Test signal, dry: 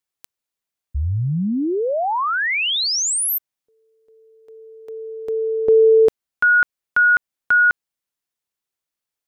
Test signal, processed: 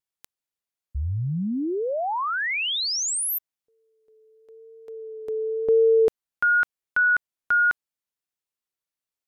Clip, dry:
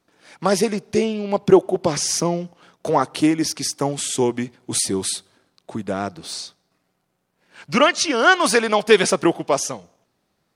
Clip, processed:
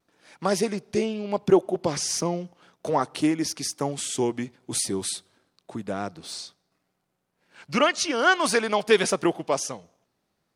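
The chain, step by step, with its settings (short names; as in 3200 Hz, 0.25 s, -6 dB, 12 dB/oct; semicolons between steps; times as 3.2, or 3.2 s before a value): vibrato 0.9 Hz 25 cents; gain -5.5 dB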